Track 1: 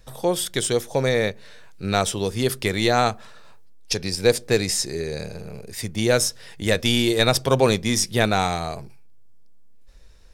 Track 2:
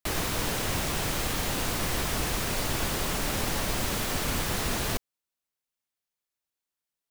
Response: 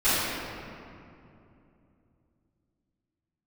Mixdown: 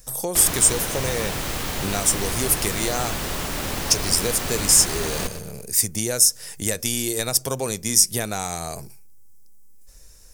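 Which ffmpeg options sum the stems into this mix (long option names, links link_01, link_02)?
-filter_complex "[0:a]acompressor=threshold=-26dB:ratio=3,aexciter=amount=6.2:drive=5.7:freq=5400,volume=0dB[link_01];[1:a]adelay=300,volume=1.5dB,asplit=2[link_02][link_03];[link_03]volume=-12.5dB,aecho=0:1:119|238|357|476|595:1|0.36|0.13|0.0467|0.0168[link_04];[link_01][link_02][link_04]amix=inputs=3:normalize=0"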